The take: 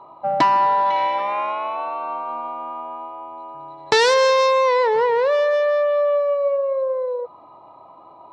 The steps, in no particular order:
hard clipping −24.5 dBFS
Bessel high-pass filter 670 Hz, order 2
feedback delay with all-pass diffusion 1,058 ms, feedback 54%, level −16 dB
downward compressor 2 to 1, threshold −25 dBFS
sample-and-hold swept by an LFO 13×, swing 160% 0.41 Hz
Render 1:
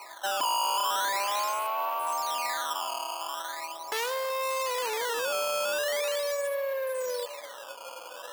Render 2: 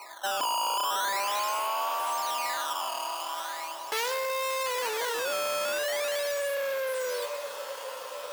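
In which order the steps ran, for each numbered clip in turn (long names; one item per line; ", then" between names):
downward compressor, then hard clipping, then feedback delay with all-pass diffusion, then sample-and-hold swept by an LFO, then Bessel high-pass filter
sample-and-hold swept by an LFO, then feedback delay with all-pass diffusion, then hard clipping, then Bessel high-pass filter, then downward compressor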